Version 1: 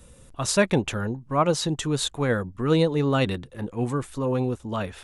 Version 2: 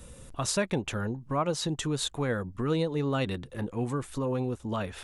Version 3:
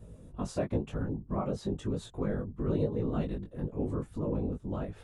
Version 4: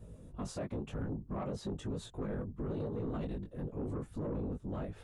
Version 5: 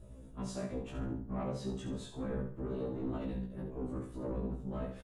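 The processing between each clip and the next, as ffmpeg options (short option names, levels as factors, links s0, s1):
-af "acompressor=threshold=0.0178:ratio=2,volume=1.33"
-af "afftfilt=real='hypot(re,im)*cos(2*PI*random(0))':imag='hypot(re,im)*sin(2*PI*random(1))':win_size=512:overlap=0.75,flanger=delay=18.5:depth=2.2:speed=0.97,tiltshelf=f=970:g=9"
-af "alimiter=level_in=1.26:limit=0.0631:level=0:latency=1:release=19,volume=0.794,asoftclip=type=tanh:threshold=0.0335,volume=0.841"
-af "aecho=1:1:68|136|204|272:0.447|0.156|0.0547|0.0192,afftfilt=real='re*1.73*eq(mod(b,3),0)':imag='im*1.73*eq(mod(b,3),0)':win_size=2048:overlap=0.75,volume=1.19"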